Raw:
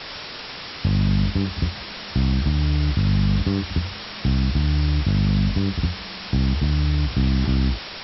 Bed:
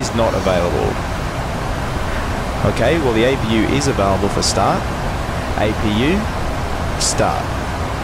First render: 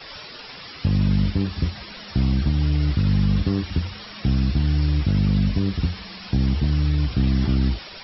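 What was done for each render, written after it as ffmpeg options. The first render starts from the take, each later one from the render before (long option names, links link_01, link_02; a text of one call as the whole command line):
ffmpeg -i in.wav -af "afftdn=noise_reduction=12:noise_floor=-35" out.wav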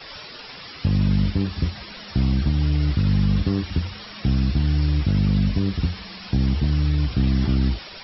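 ffmpeg -i in.wav -af anull out.wav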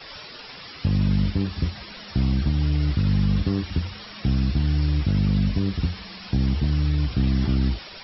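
ffmpeg -i in.wav -af "volume=-1.5dB" out.wav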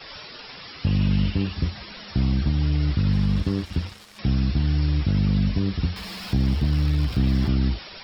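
ffmpeg -i in.wav -filter_complex "[0:a]asettb=1/sr,asplit=3[link_01][link_02][link_03];[link_01]atrim=end=0.874[link_04];[link_02]atrim=start=0.87:end=1.53,asetpts=PTS-STARTPTS,afade=type=in:duration=0.004:curve=qsin,afade=type=out:start_time=0.656:duration=0.004:curve=qsin,equalizer=frequency=2800:width=4.7:gain=9[link_05];[link_03]atrim=start=1.526[link_06];[link_04][link_05]acrossfade=duration=0.004:curve1=hsin:curve2=qsin[link_07];[link_07][link_06]acrossfade=duration=0.004:curve1=qsin:curve2=hsin,asettb=1/sr,asplit=3[link_08][link_09][link_10];[link_08]atrim=end=3.124[link_11];[link_09]atrim=start=3.12:end=4.19,asetpts=PTS-STARTPTS,afade=type=in:duration=0.004:curve=qsin,afade=type=out:start_time=1.066:duration=0.004:curve=qsin,aeval=exprs='sgn(val(0))*max(abs(val(0))-0.01,0)':channel_layout=same[link_12];[link_10]atrim=start=4.186[link_13];[link_11][link_12]acrossfade=duration=0.004:curve1=hsin:curve2=qsin[link_14];[link_14][link_13]acrossfade=duration=0.004:curve1=qsin:curve2=hsin,asettb=1/sr,asplit=3[link_15][link_16][link_17];[link_15]atrim=end=5.964[link_18];[link_16]atrim=start=5.96:end=7.49,asetpts=PTS-STARTPTS,afade=type=in:duration=0.004:curve=qsin,afade=type=out:start_time=1.526:duration=0.004:curve=qsin,aeval=exprs='val(0)+0.5*0.0141*sgn(val(0))':channel_layout=same[link_19];[link_17]atrim=start=7.486[link_20];[link_18][link_19]acrossfade=duration=0.004:curve1=hsin:curve2=qsin[link_21];[link_21][link_20]acrossfade=duration=0.004:curve1=qsin:curve2=hsin" out.wav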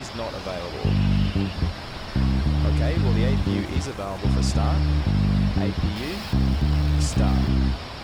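ffmpeg -i in.wav -i bed.wav -filter_complex "[1:a]volume=-15dB[link_01];[0:a][link_01]amix=inputs=2:normalize=0" out.wav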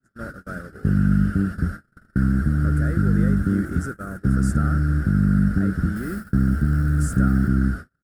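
ffmpeg -i in.wav -af "agate=range=-45dB:threshold=-29dB:ratio=16:detection=peak,firequalizer=gain_entry='entry(110,0);entry(180,6);entry(980,-23);entry(1400,13);entry(2300,-20);entry(3700,-22);entry(9000,4)':delay=0.05:min_phase=1" out.wav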